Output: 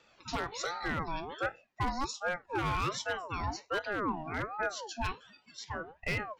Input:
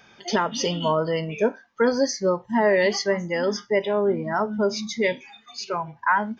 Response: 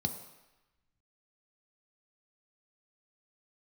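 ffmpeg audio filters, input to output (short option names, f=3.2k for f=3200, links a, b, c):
-af "aeval=exprs='0.188*(abs(mod(val(0)/0.188+3,4)-2)-1)':c=same,aeval=exprs='val(0)*sin(2*PI*770*n/s+770*0.4/1.3*sin(2*PI*1.3*n/s))':c=same,volume=-8.5dB"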